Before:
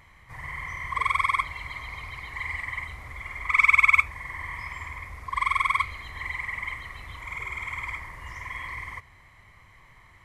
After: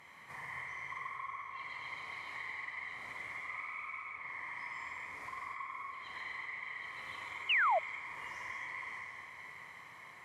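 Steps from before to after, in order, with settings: low-pass that closes with the level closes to 1.5 kHz, closed at -21.5 dBFS; high-pass 240 Hz 12 dB/octave; compression 5:1, threshold -44 dBFS, peak gain reduction 20.5 dB; echo that smears into a reverb 616 ms, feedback 47%, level -10 dB; gated-style reverb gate 300 ms flat, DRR -1.5 dB; painted sound fall, 7.49–7.79 s, 600–3100 Hz -27 dBFS; trim -2 dB

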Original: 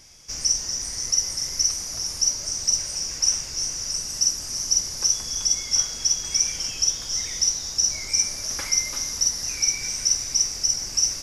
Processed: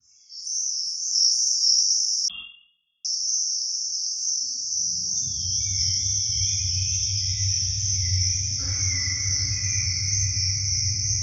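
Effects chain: 0.97–1.67 s: tilt EQ +2.5 dB/octave; loudest bins only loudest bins 64; high-pass sweep 1.1 kHz -> 100 Hz, 3.79–5.54 s; feedback comb 95 Hz, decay 1.9 s, mix 90%; 6.12–7.06 s: phase dispersion lows, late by 54 ms, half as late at 1 kHz; wow and flutter 94 cents; echo that smears into a reverb 698 ms, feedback 53%, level -5 dB; reverberation RT60 1.0 s, pre-delay 3 ms, DRR -20 dB; 2.28–3.05 s: frequency inversion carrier 3.4 kHz; decay stretcher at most 95 dB/s; trim -6.5 dB

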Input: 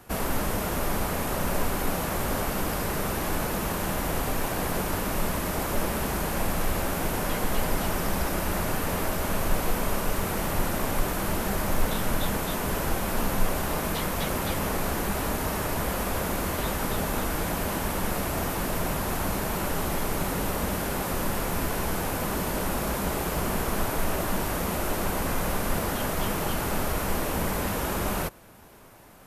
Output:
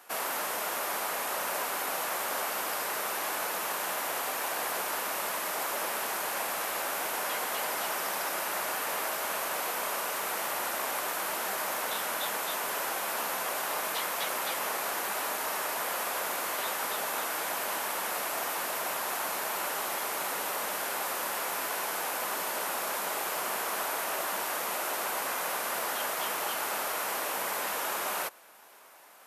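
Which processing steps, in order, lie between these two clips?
high-pass 700 Hz 12 dB/octave

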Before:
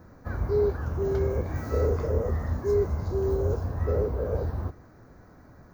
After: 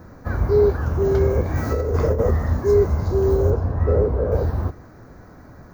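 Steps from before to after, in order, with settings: 1.57–2.31 s: compressor with a negative ratio -26 dBFS, ratio -0.5; 3.50–4.32 s: low-pass 1.8 kHz 6 dB/octave; trim +8 dB

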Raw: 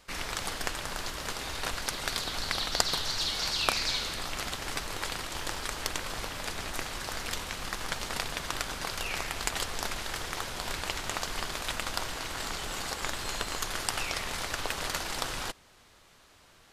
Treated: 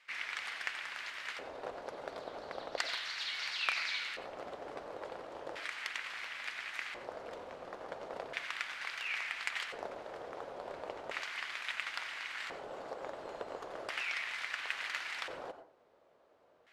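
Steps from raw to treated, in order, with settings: LFO band-pass square 0.36 Hz 540–2100 Hz; reverberation RT60 0.35 s, pre-delay 82 ms, DRR 10 dB; trim +1.5 dB

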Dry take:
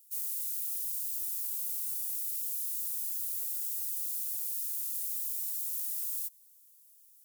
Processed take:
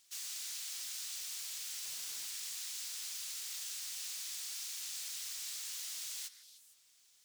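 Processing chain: distance through air 150 m; 1.84–2.27 s: modulation noise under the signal 14 dB; repeats whose band climbs or falls 152 ms, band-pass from 1.6 kHz, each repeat 1.4 oct, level -10 dB; trim +16 dB

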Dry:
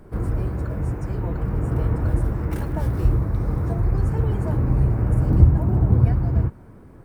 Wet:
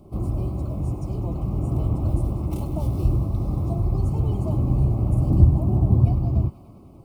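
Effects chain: Butterworth band-stop 1.7 kHz, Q 1.1; comb of notches 470 Hz; feedback echo behind a high-pass 99 ms, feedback 84%, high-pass 1.4 kHz, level -13 dB

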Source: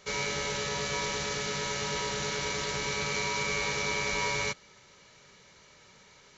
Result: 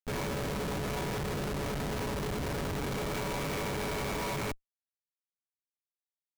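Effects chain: Schmitt trigger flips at -28.5 dBFS

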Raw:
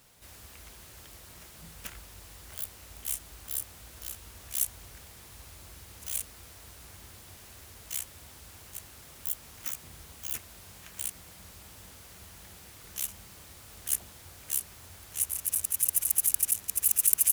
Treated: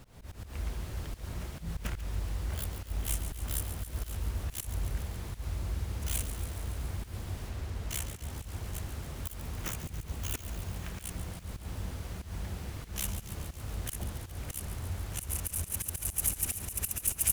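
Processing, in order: tilt EQ -3 dB/octave; slow attack 124 ms; on a send: feedback echo behind a high-pass 140 ms, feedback 72%, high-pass 1.9 kHz, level -11 dB; 7.49–8.30 s: on the sum: hysteresis with a dead band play -59 dBFS; trim +7 dB

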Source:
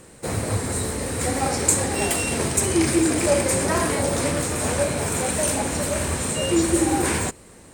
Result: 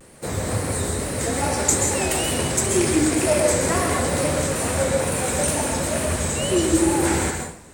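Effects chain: wow and flutter 130 cents; plate-style reverb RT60 0.59 s, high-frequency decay 0.8×, pre-delay 115 ms, DRR 2.5 dB; trim -1 dB

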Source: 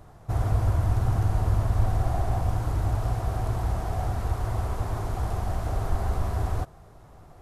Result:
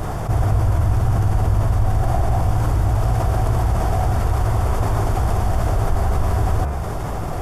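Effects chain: band-stop 4 kHz, Q 8.3; de-hum 71 Hz, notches 37; level flattener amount 70%; trim +3.5 dB

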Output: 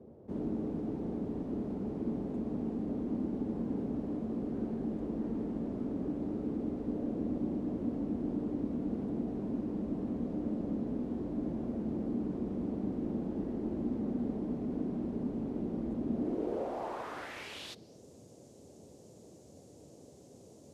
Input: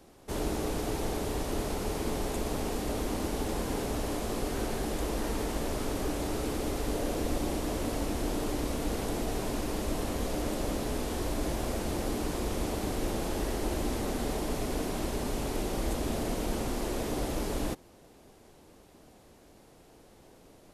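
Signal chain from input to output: band-pass sweep 220 Hz -> 6.8 kHz, 16.13–18.03 s; band noise 76–550 Hz -60 dBFS; trim +4.5 dB

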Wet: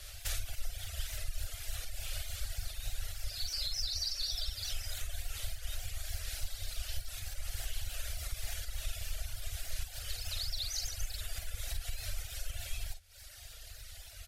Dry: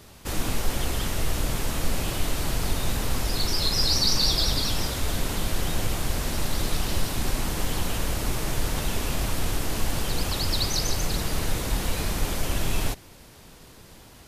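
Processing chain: octave divider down 2 oct, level +3 dB; FFT filter 100 Hz 0 dB, 160 Hz -26 dB, 370 Hz -24 dB, 660 Hz -3 dB, 1 kHz -19 dB, 1.4 kHz -2 dB, 3.8 kHz +3 dB; compression, threshold -33 dBFS, peak gain reduction 17 dB; peaking EQ 120 Hz -10 dB 0.45 oct; early reflections 44 ms -6 dB, 54 ms -6 dB; reverb removal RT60 1.7 s; vibrato with a chosen wave saw up 3.4 Hz, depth 100 cents

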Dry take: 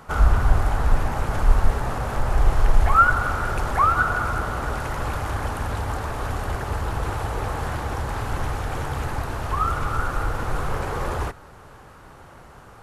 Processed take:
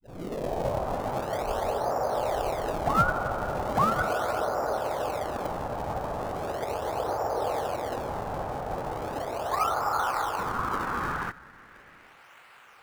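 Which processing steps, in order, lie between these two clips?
tape start-up on the opening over 1.00 s; band-pass sweep 610 Hz -> 2.5 kHz, 9.31–12.30 s; in parallel at -6 dB: decimation with a swept rate 36×, swing 160% 0.38 Hz; on the sum: trim +4 dB

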